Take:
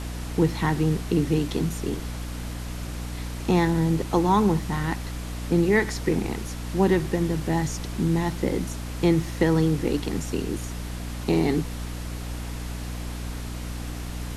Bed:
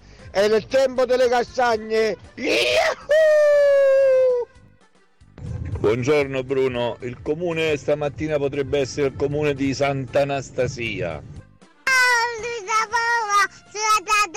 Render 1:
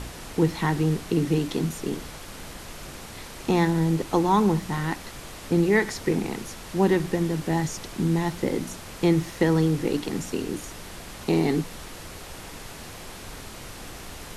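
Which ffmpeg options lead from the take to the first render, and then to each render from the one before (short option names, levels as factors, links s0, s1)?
-af "bandreject=f=60:t=h:w=4,bandreject=f=120:t=h:w=4,bandreject=f=180:t=h:w=4,bandreject=f=240:t=h:w=4,bandreject=f=300:t=h:w=4"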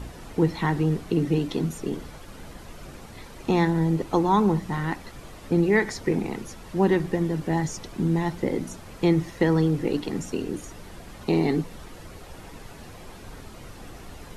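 -af "afftdn=nr=9:nf=-41"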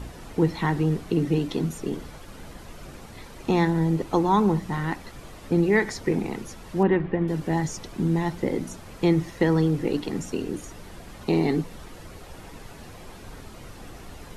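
-filter_complex "[0:a]asettb=1/sr,asplit=3[s0][s1][s2];[s0]atrim=end=6.834[s3];[s1]atrim=start=6.83:end=7.28,asetpts=PTS-STARTPTS,afade=t=in:d=0.004:c=qsin,afade=t=out:st=0.446:d=0.004:c=qsin,lowpass=f=2800:w=0.5412,lowpass=f=2800:w=1.3066[s4];[s2]atrim=start=7.276[s5];[s3][s4]acrossfade=d=0.004:c1=hsin:c2=qsin[s6];[s6][s5]acrossfade=d=0.004:c1=qsin:c2=hsin"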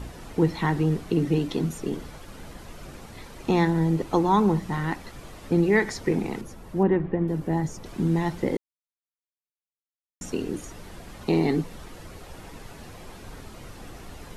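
-filter_complex "[0:a]asettb=1/sr,asplit=3[s0][s1][s2];[s0]atrim=end=6.414[s3];[s1]atrim=start=6.41:end=7.86,asetpts=PTS-STARTPTS,afade=t=in:d=0.004:c=qsin,afade=t=out:st=1.446:d=0.004:c=qsin,equalizer=f=4200:w=0.34:g=-8.5[s4];[s2]atrim=start=7.856[s5];[s3][s4]acrossfade=d=0.004:c1=hsin:c2=qsin[s6];[s6][s5]acrossfade=d=0.004:c1=qsin:c2=hsin,asplit=3[s7][s8][s9];[s7]atrim=end=8.57,asetpts=PTS-STARTPTS,afade=t=out:st=8.566:d=0.004:c=hsin[s10];[s8]atrim=start=8.57:end=10.21,asetpts=PTS-STARTPTS,volume=0[s11];[s9]atrim=start=10.21,asetpts=PTS-STARTPTS,afade=t=in:d=0.004:c=hsin[s12];[s10][s11][s12]concat=n=3:v=0:a=1"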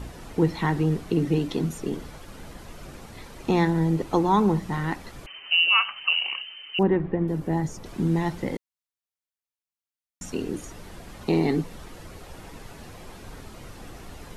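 -filter_complex "[0:a]asettb=1/sr,asplit=3[s0][s1][s2];[s0]atrim=end=5.264[s3];[s1]atrim=start=5.26:end=6.79,asetpts=PTS-STARTPTS,afade=t=in:d=0.004:c=qsin,afade=t=out:st=1.526:d=0.004:c=qsin,lowpass=f=2600:t=q:w=0.5098,lowpass=f=2600:t=q:w=0.6013,lowpass=f=2600:t=q:w=0.9,lowpass=f=2600:t=q:w=2.563,afreqshift=-3100[s4];[s2]atrim=start=6.786[s5];[s3][s4]acrossfade=d=0.004:c1=hsin:c2=qsin[s6];[s6][s5]acrossfade=d=0.004:c1=qsin:c2=hsin,asettb=1/sr,asplit=3[s7][s8][s9];[s7]atrim=end=8.434[s10];[s8]atrim=start=8.43:end=10.35,asetpts=PTS-STARTPTS,afade=t=in:d=0.004:c=qsin,afade=t=out:st=1.916:d=0.004:c=qsin,equalizer=f=390:t=o:w=0.91:g=-7.5[s11];[s9]atrim=start=10.346[s12];[s10][s11]acrossfade=d=0.004:c1=hsin:c2=qsin[s13];[s13][s12]acrossfade=d=0.004:c1=qsin:c2=hsin"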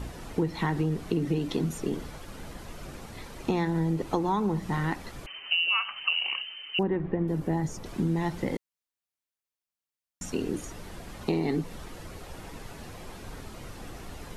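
-af "acompressor=threshold=0.0708:ratio=6"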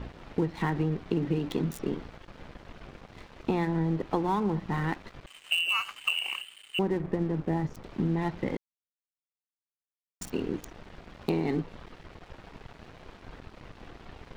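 -filter_complex "[0:a]acrossover=split=4300[s0][s1];[s0]aeval=exprs='sgn(val(0))*max(abs(val(0))-0.00596,0)':c=same[s2];[s1]acrusher=bits=5:mix=0:aa=0.000001[s3];[s2][s3]amix=inputs=2:normalize=0"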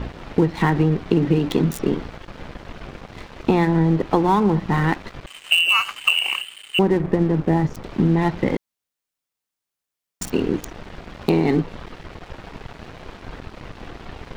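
-af "volume=3.35,alimiter=limit=0.794:level=0:latency=1"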